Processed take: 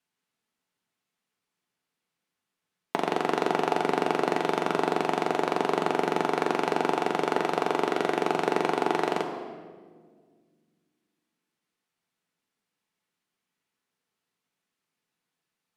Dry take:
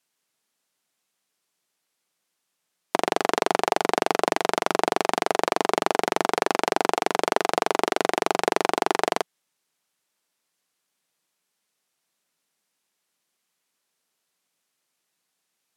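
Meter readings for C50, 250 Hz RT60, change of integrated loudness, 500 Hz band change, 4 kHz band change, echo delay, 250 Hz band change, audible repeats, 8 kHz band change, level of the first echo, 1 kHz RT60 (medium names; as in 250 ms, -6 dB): 7.0 dB, 2.6 s, -3.0 dB, -2.0 dB, -6.5 dB, no echo, +1.0 dB, no echo, -11.0 dB, no echo, 1.5 s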